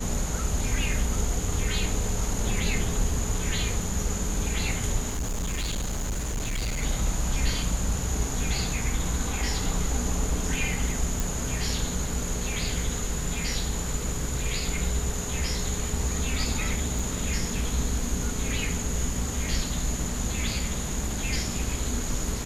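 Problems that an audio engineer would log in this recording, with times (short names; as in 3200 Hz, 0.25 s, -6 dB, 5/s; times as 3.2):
5.09–6.83 clipped -25.5 dBFS
11.2 pop
16.99 gap 3.7 ms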